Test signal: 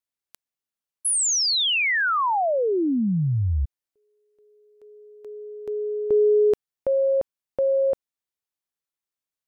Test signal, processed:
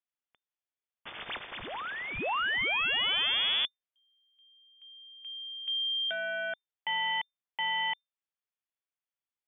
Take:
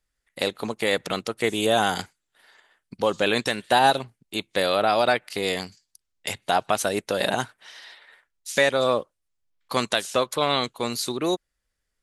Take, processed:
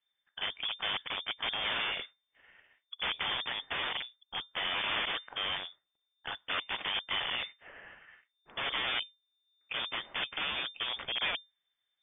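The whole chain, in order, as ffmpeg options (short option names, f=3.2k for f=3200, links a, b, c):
-af "aeval=exprs='(mod(11.2*val(0)+1,2)-1)/11.2':c=same,lowpass=f=3.1k:t=q:w=0.5098,lowpass=f=3.1k:t=q:w=0.6013,lowpass=f=3.1k:t=q:w=0.9,lowpass=f=3.1k:t=q:w=2.563,afreqshift=-3600,volume=-4dB"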